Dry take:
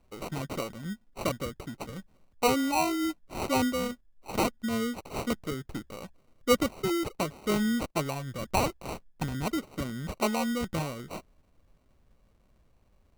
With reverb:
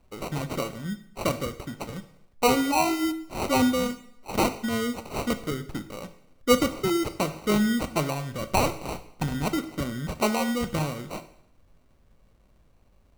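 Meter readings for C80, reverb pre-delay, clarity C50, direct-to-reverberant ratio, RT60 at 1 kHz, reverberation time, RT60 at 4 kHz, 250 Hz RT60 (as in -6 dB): 15.5 dB, 19 ms, 13.0 dB, 10.0 dB, 0.65 s, 0.65 s, 0.65 s, 0.70 s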